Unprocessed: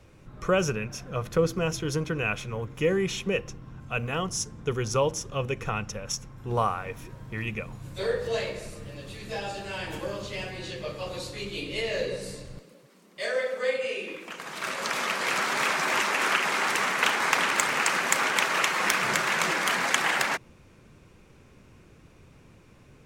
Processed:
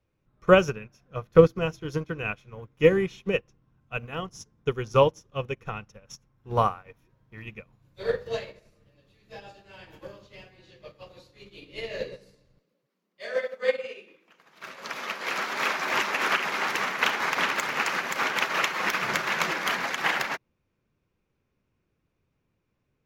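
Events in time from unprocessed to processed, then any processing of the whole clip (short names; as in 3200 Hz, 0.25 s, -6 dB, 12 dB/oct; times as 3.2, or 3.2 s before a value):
14.98–15.9 HPF 180 Hz
whole clip: bell 8600 Hz -14.5 dB 0.44 oct; maximiser +10 dB; upward expander 2.5:1, over -30 dBFS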